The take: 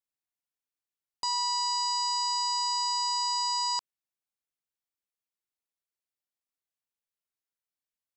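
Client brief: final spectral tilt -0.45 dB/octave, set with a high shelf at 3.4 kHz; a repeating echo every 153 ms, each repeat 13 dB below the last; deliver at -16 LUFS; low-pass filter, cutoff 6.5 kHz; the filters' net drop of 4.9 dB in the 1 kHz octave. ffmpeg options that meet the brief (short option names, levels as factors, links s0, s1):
-af "lowpass=6500,equalizer=f=1000:t=o:g=-5.5,highshelf=f=3400:g=7.5,aecho=1:1:153|306|459:0.224|0.0493|0.0108,volume=2.51"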